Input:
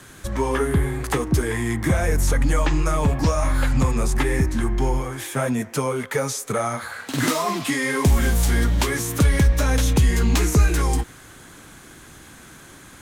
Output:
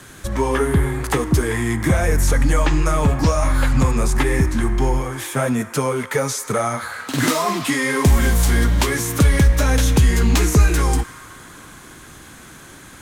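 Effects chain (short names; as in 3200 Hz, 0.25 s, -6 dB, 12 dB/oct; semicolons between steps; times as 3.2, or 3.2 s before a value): on a send: Chebyshev high-pass 900 Hz, order 10 + reverb RT60 4.9 s, pre-delay 47 ms, DRR 13 dB; on the sum: gain +3 dB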